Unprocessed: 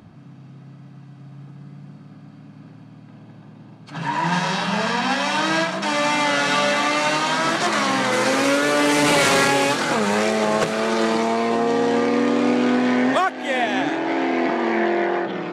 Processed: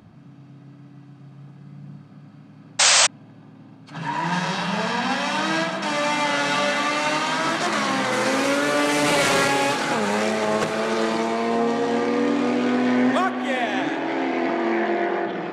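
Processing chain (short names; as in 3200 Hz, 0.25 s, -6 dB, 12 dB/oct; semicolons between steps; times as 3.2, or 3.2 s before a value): spring tank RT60 3.1 s, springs 56 ms, chirp 65 ms, DRR 8 dB; painted sound noise, 2.79–3.07, 500–8500 Hz -12 dBFS; gain -3 dB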